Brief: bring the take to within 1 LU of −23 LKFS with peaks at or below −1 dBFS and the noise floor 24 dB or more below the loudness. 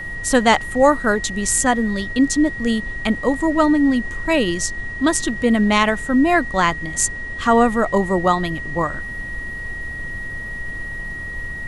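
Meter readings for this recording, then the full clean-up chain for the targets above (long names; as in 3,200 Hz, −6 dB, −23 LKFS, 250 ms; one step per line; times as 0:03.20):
interfering tone 1,900 Hz; level of the tone −28 dBFS; background noise floor −30 dBFS; target noise floor −43 dBFS; integrated loudness −19.0 LKFS; sample peak −1.5 dBFS; target loudness −23.0 LKFS
→ notch filter 1,900 Hz, Q 30
noise reduction from a noise print 13 dB
level −4 dB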